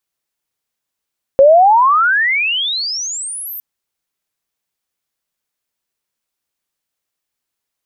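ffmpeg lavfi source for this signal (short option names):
-f lavfi -i "aevalsrc='pow(10,(-3-21.5*t/2.21)/20)*sin(2*PI*530*2.21/log(14000/530)*(exp(log(14000/530)*t/2.21)-1))':d=2.21:s=44100"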